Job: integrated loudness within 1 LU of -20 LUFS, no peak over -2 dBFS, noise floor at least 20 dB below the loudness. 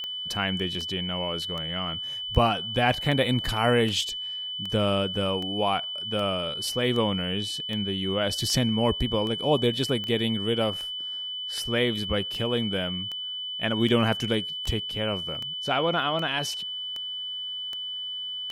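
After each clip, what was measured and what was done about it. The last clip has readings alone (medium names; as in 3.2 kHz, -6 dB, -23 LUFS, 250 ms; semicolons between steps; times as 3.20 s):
clicks found 25; steady tone 3 kHz; tone level -31 dBFS; loudness -26.5 LUFS; peak level -6.5 dBFS; loudness target -20.0 LUFS
-> de-click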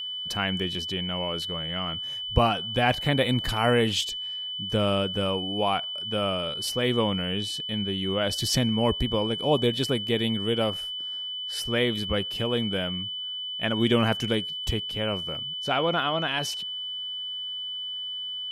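clicks found 0; steady tone 3 kHz; tone level -31 dBFS
-> band-stop 3 kHz, Q 30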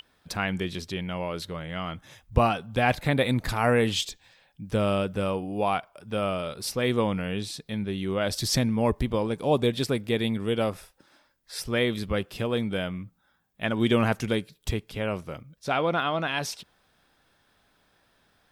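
steady tone not found; loudness -27.5 LUFS; peak level -6.5 dBFS; loudness target -20.0 LUFS
-> trim +7.5 dB; peak limiter -2 dBFS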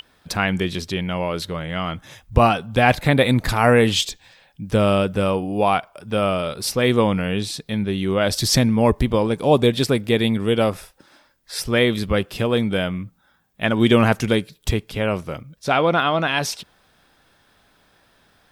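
loudness -20.0 LUFS; peak level -2.0 dBFS; noise floor -60 dBFS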